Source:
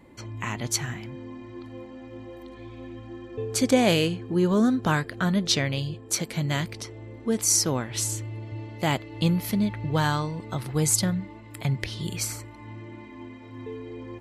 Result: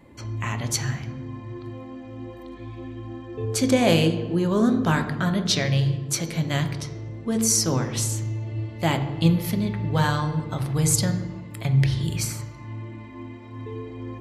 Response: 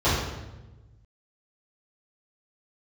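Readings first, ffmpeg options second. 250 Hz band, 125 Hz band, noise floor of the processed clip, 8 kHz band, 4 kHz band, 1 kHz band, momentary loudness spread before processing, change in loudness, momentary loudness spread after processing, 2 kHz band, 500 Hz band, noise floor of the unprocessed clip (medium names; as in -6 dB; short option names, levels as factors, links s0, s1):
+2.0 dB, +5.5 dB, -40 dBFS, +0.5 dB, +1.0 dB, +1.5 dB, 20 LU, +2.0 dB, 17 LU, +1.0 dB, +1.5 dB, -45 dBFS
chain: -filter_complex "[0:a]asplit=2[s0][s1];[1:a]atrim=start_sample=2205[s2];[s1][s2]afir=irnorm=-1:irlink=0,volume=0.0668[s3];[s0][s3]amix=inputs=2:normalize=0"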